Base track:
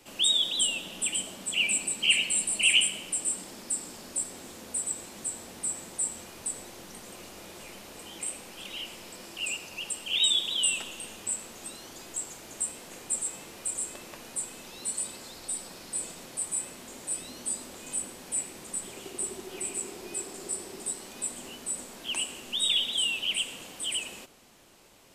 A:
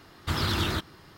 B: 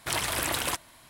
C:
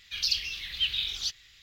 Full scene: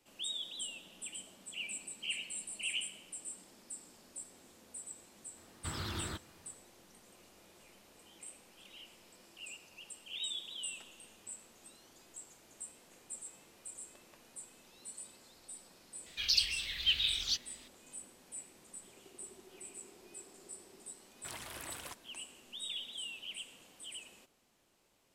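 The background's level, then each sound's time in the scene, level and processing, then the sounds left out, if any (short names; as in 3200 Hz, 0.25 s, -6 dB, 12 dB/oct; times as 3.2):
base track -15.5 dB
5.37 add A -13 dB
16.06 add C -2 dB
21.18 add B -17.5 dB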